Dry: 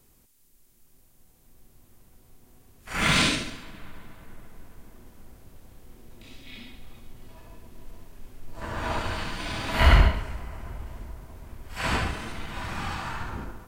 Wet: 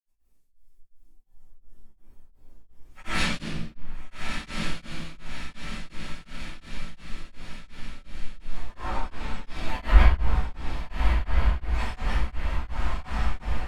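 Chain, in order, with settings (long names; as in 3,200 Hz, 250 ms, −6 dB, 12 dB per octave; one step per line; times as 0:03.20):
granular cloud, pitch spread up and down by 3 semitones
multi-voice chorus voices 6, 0.41 Hz, delay 16 ms, depth 2.8 ms
feedback delay with all-pass diffusion 1,292 ms, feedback 61%, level −3.5 dB
noise reduction from a noise print of the clip's start 8 dB
rectangular room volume 190 cubic metres, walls mixed, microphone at 5.4 metres
tremolo along a rectified sine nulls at 2.8 Hz
level −14.5 dB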